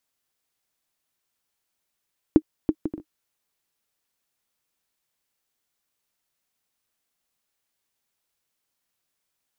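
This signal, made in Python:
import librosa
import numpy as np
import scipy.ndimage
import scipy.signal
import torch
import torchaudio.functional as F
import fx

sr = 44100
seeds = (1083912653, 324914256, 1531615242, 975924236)

y = fx.bouncing_ball(sr, first_gap_s=0.33, ratio=0.5, hz=311.0, decay_ms=60.0, level_db=-3.5)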